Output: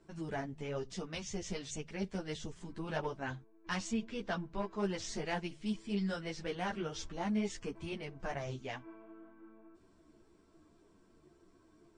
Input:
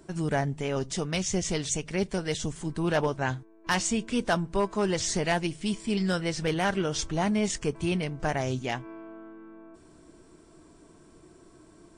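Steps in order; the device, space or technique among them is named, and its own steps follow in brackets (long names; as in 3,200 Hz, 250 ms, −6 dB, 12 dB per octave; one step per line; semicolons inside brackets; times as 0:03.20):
string-machine ensemble chorus (string-ensemble chorus; low-pass filter 5,900 Hz 12 dB per octave)
0:03.93–0:04.78: low-pass filter 6,000 Hz 12 dB per octave
level −7.5 dB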